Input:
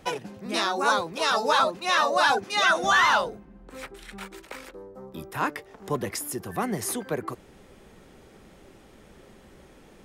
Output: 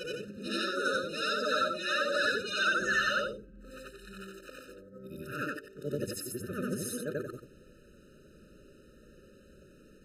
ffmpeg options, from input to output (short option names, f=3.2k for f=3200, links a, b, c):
-af "afftfilt=real='re':imag='-im':win_size=8192:overlap=0.75,afftfilt=real='re*eq(mod(floor(b*sr/1024/610),2),0)':imag='im*eq(mod(floor(b*sr/1024/610),2),0)':win_size=1024:overlap=0.75"